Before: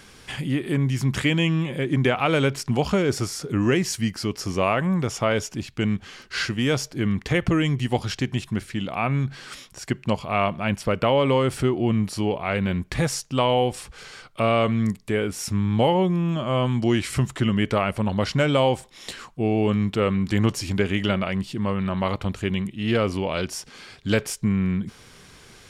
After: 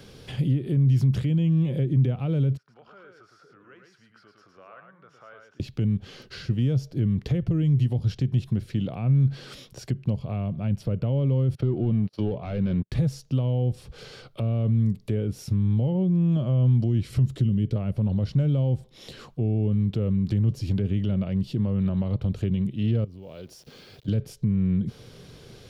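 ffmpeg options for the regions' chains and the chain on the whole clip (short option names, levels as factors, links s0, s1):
-filter_complex "[0:a]asettb=1/sr,asplit=3[s0][s1][s2];[s0]atrim=end=2.574[s3];[s1]atrim=start=2.57:end=5.6,asetpts=PTS-STARTPTS,afade=t=in:d=0.004:c=qsin,afade=t=out:st=3.026:d=0.004:c=qsin,acompressor=threshold=0.0251:ratio=3:attack=3.2:release=140:knee=1:detection=peak,bandpass=f=1400:t=q:w=5,aecho=1:1:110:0.562,atrim=end_sample=133623[s4];[s2]atrim=start=5.596[s5];[s3][s4]acrossfade=d=0.004:c1=hsin:c2=qsin[s6];[s6][s5]acrossfade=d=0.004:c1=qsin:c2=hsin,asettb=1/sr,asplit=3[s7][s8][s9];[s7]atrim=end=11.554[s10];[s8]atrim=start=11.55:end=12.92,asetpts=PTS-STARTPTS,afade=t=in:d=0.004:c=qsin,afade=t=out:st=1.366:d=0.004:c=qsin,asplit=2[s11][s12];[s12]highpass=f=720:p=1,volume=7.94,asoftclip=type=tanh:threshold=0.355[s13];[s11][s13]amix=inputs=2:normalize=0,lowpass=f=2900:p=1,volume=0.501,agate=range=0.0141:threshold=0.0447:ratio=16:release=100:detection=peak,equalizer=f=8000:t=o:w=0.74:g=-8.5[s14];[s9]atrim=start=12.916[s15];[s10][s14]acrossfade=d=0.004:c1=hsin:c2=qsin[s16];[s16][s15]acrossfade=d=0.004:c1=qsin:c2=hsin,asettb=1/sr,asplit=3[s17][s18][s19];[s17]atrim=end=17.274[s20];[s18]atrim=start=17.27:end=17.76,asetpts=PTS-STARTPTS,afade=t=in:d=0.004:c=qsin,afade=t=out:st=0.486:d=0.004:c=qsin,acrossover=split=460|3000[s21][s22][s23];[s22]acompressor=threshold=0.00158:ratio=1.5:attack=3.2:release=140:knee=2.83:detection=peak[s24];[s21][s24][s23]amix=inputs=3:normalize=0,equalizer=f=900:t=o:w=0.89:g=-4[s25];[s19]atrim=start=17.756[s26];[s20][s25]acrossfade=d=0.004:c1=hsin:c2=qsin[s27];[s27][s26]acrossfade=d=0.004:c1=qsin:c2=hsin,asettb=1/sr,asplit=3[s28][s29][s30];[s28]atrim=end=23.044[s31];[s29]atrim=start=23.04:end=24.08,asetpts=PTS-STARTPTS,afade=t=in:d=0.004:c=qsin,afade=t=out:st=1.036:d=0.004:c=qsin,acompressor=threshold=0.00708:ratio=4:attack=3.2:release=140:knee=1:detection=peak,aeval=exprs='val(0)*gte(abs(val(0)),0.00188)':c=same[s32];[s30]atrim=start=24.076[s33];[s31][s32]acrossfade=d=0.004:c1=hsin:c2=qsin[s34];[s34][s33]acrossfade=d=0.004:c1=qsin:c2=hsin,acrossover=split=220[s35][s36];[s36]acompressor=threshold=0.0178:ratio=10[s37];[s35][s37]amix=inputs=2:normalize=0,alimiter=limit=0.0891:level=0:latency=1:release=45,equalizer=f=125:t=o:w=1:g=8,equalizer=f=500:t=o:w=1:g=7,equalizer=f=1000:t=o:w=1:g=-6,equalizer=f=2000:t=o:w=1:g=-7,equalizer=f=4000:t=o:w=1:g=3,equalizer=f=8000:t=o:w=1:g=-10"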